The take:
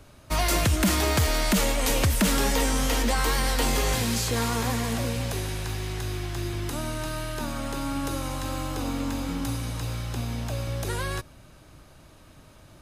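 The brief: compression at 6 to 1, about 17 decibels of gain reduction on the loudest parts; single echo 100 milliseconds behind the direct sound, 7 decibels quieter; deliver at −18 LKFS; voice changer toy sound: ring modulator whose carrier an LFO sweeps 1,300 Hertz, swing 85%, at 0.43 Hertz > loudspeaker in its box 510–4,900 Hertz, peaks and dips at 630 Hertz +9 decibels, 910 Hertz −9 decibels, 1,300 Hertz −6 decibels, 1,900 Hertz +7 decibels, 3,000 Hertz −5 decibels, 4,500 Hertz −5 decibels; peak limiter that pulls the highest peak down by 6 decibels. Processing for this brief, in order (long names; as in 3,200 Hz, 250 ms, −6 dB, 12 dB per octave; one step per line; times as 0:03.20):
downward compressor 6 to 1, threshold −38 dBFS
brickwall limiter −33 dBFS
single-tap delay 100 ms −7 dB
ring modulator whose carrier an LFO sweeps 1,300 Hz, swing 85%, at 0.43 Hz
loudspeaker in its box 510–4,900 Hz, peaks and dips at 630 Hz +9 dB, 910 Hz −9 dB, 1,300 Hz −6 dB, 1,900 Hz +7 dB, 3,000 Hz −5 dB, 4,500 Hz −5 dB
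level +24.5 dB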